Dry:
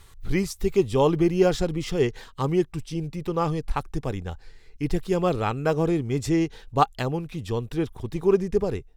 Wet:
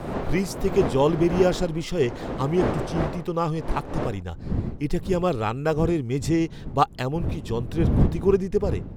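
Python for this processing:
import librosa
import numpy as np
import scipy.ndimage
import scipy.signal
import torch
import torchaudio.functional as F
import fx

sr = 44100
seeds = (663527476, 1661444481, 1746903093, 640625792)

y = fx.dmg_wind(x, sr, seeds[0], corner_hz=fx.steps((0.0, 540.0), (4.21, 170.0)), level_db=-29.0)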